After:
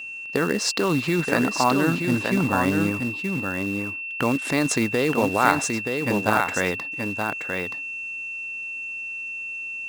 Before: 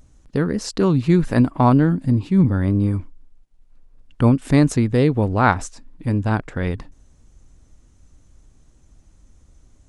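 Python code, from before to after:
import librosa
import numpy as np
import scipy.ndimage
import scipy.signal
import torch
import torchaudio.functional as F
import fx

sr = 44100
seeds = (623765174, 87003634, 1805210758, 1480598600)

p1 = fx.weighting(x, sr, curve='A')
p2 = fx.over_compress(p1, sr, threshold_db=-26.0, ratio=-0.5)
p3 = p1 + F.gain(torch.from_numpy(p2), 1.0).numpy()
p4 = fx.quant_float(p3, sr, bits=2)
p5 = fx.vibrato(p4, sr, rate_hz=1.4, depth_cents=29.0)
p6 = p5 + 10.0 ** (-30.0 / 20.0) * np.sin(2.0 * np.pi * 2700.0 * np.arange(len(p5)) / sr)
p7 = p6 + fx.echo_single(p6, sr, ms=926, db=-5.0, dry=0)
y = F.gain(torch.from_numpy(p7), -2.5).numpy()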